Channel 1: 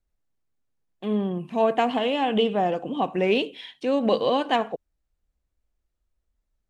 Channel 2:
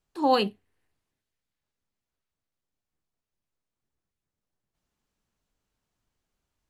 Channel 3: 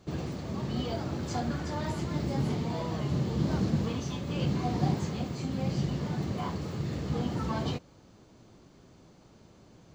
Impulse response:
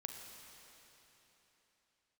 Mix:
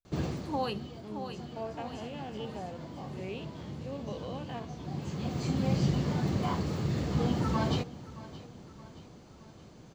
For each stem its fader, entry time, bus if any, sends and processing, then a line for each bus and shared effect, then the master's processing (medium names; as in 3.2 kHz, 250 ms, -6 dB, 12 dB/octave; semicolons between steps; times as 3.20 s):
-17.5 dB, 0.00 s, no send, no echo send, spectrogram pixelated in time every 50 ms
-8.0 dB, 0.30 s, no send, echo send -8.5 dB, peak limiter -16.5 dBFS, peak gain reduction 6 dB
+2.5 dB, 0.05 s, no send, echo send -17.5 dB, auto duck -19 dB, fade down 0.80 s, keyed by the first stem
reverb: none
echo: feedback delay 622 ms, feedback 52%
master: none